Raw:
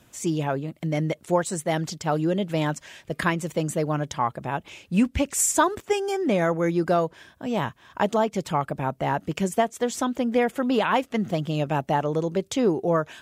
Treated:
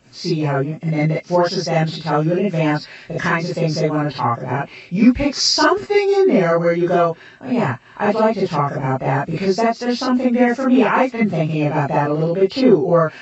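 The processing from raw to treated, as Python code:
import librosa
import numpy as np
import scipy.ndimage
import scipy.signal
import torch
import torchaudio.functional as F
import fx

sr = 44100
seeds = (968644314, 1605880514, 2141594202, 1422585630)

y = fx.freq_compress(x, sr, knee_hz=2000.0, ratio=1.5)
y = fx.rev_gated(y, sr, seeds[0], gate_ms=80, shape='rising', drr_db=-7.0)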